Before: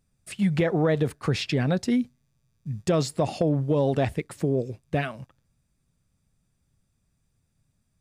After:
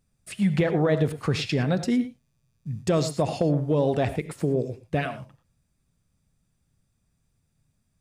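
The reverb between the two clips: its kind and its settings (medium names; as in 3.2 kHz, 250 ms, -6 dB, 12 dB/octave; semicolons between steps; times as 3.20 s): gated-style reverb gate 130 ms rising, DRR 11 dB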